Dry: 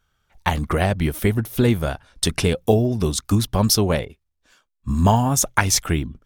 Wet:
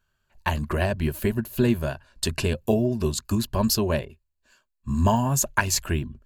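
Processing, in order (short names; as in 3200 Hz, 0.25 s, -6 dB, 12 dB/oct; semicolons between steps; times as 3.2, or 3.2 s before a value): ripple EQ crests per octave 1.4, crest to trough 9 dB; gain -5.5 dB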